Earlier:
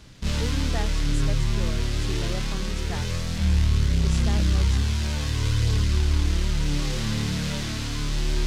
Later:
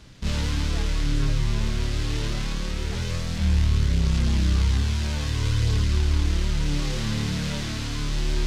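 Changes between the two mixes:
speech -10.0 dB; master: add treble shelf 8.9 kHz -4.5 dB

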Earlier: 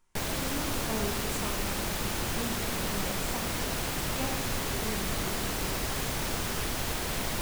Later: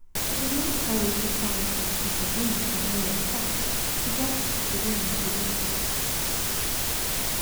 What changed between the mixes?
speech: add tilt EQ -4 dB/octave; master: add treble shelf 3.9 kHz +10.5 dB

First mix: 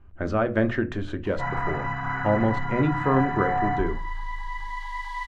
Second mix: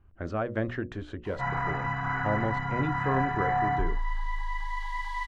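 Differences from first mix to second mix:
speech -4.5 dB; reverb: off

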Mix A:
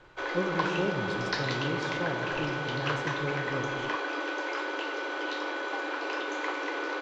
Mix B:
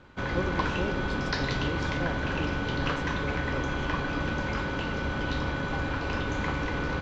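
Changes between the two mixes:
speech: send -6.0 dB; background: remove steep high-pass 300 Hz 96 dB/octave

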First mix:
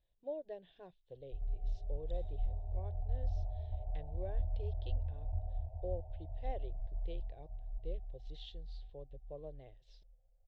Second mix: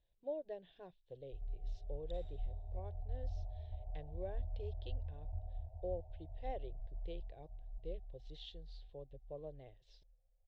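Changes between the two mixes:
first sound -5.5 dB; second sound +4.0 dB

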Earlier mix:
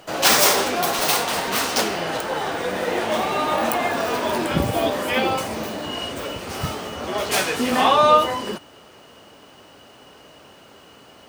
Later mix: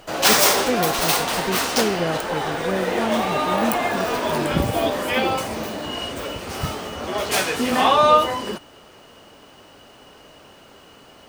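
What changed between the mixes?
speech +10.0 dB; background: remove high-pass 62 Hz

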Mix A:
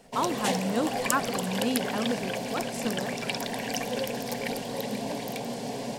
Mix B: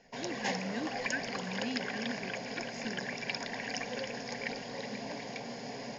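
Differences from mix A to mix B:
speech: add brick-wall FIR band-stop 460–1500 Hz; master: add rippled Chebyshev low-pass 6.9 kHz, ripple 9 dB

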